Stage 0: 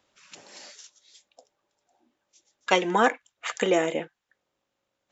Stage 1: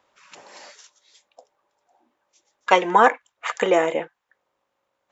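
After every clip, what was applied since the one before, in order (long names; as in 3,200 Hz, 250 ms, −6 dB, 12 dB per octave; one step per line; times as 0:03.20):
graphic EQ with 10 bands 500 Hz +5 dB, 1,000 Hz +10 dB, 2,000 Hz +4 dB
level −2 dB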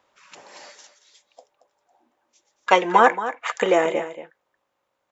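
single-tap delay 227 ms −12.5 dB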